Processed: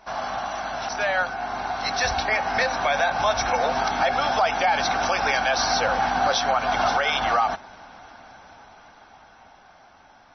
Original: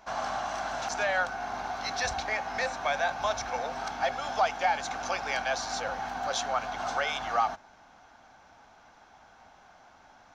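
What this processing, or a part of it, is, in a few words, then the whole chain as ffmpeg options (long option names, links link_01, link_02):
low-bitrate web radio: -af "dynaudnorm=framelen=270:gausssize=17:maxgain=9dB,alimiter=limit=-15.5dB:level=0:latency=1:release=101,volume=4dB" -ar 24000 -c:a libmp3lame -b:a 24k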